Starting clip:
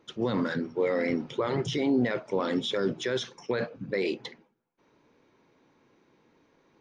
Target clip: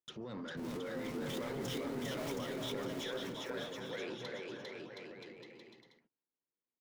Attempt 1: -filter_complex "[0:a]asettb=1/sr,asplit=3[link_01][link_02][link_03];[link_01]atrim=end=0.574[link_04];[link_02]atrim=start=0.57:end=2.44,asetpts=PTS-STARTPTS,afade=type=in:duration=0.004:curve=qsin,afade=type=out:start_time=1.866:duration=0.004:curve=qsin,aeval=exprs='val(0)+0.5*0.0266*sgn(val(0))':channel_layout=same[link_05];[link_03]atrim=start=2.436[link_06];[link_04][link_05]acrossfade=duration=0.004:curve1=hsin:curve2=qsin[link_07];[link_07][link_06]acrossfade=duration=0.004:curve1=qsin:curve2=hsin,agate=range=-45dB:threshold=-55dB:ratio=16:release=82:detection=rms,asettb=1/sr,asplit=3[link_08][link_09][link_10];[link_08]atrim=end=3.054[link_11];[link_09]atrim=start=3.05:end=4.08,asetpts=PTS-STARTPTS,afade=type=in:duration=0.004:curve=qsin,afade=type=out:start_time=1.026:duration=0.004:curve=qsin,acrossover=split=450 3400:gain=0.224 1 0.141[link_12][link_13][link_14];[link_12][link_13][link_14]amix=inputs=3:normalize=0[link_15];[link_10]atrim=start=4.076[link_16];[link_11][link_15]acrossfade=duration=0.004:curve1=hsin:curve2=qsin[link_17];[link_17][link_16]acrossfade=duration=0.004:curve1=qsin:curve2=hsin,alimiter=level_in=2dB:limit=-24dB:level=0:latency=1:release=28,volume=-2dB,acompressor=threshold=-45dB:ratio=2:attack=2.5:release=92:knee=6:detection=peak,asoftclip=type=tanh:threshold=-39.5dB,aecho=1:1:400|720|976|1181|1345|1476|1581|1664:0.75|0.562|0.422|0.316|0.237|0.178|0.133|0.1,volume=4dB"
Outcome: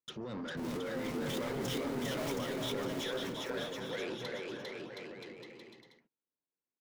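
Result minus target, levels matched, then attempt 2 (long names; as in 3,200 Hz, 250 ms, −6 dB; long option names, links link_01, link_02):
downward compressor: peak gain reduction −5 dB
-filter_complex "[0:a]asettb=1/sr,asplit=3[link_01][link_02][link_03];[link_01]atrim=end=0.574[link_04];[link_02]atrim=start=0.57:end=2.44,asetpts=PTS-STARTPTS,afade=type=in:duration=0.004:curve=qsin,afade=type=out:start_time=1.866:duration=0.004:curve=qsin,aeval=exprs='val(0)+0.5*0.0266*sgn(val(0))':channel_layout=same[link_05];[link_03]atrim=start=2.436[link_06];[link_04][link_05]acrossfade=duration=0.004:curve1=hsin:curve2=qsin[link_07];[link_07][link_06]acrossfade=duration=0.004:curve1=qsin:curve2=hsin,agate=range=-45dB:threshold=-55dB:ratio=16:release=82:detection=rms,asettb=1/sr,asplit=3[link_08][link_09][link_10];[link_08]atrim=end=3.054[link_11];[link_09]atrim=start=3.05:end=4.08,asetpts=PTS-STARTPTS,afade=type=in:duration=0.004:curve=qsin,afade=type=out:start_time=1.026:duration=0.004:curve=qsin,acrossover=split=450 3400:gain=0.224 1 0.141[link_12][link_13][link_14];[link_12][link_13][link_14]amix=inputs=3:normalize=0[link_15];[link_10]atrim=start=4.076[link_16];[link_11][link_15]acrossfade=duration=0.004:curve1=hsin:curve2=qsin[link_17];[link_17][link_16]acrossfade=duration=0.004:curve1=qsin:curve2=hsin,alimiter=level_in=2dB:limit=-24dB:level=0:latency=1:release=28,volume=-2dB,acompressor=threshold=-54.5dB:ratio=2:attack=2.5:release=92:knee=6:detection=peak,asoftclip=type=tanh:threshold=-39.5dB,aecho=1:1:400|720|976|1181|1345|1476|1581|1664:0.75|0.562|0.422|0.316|0.237|0.178|0.133|0.1,volume=4dB"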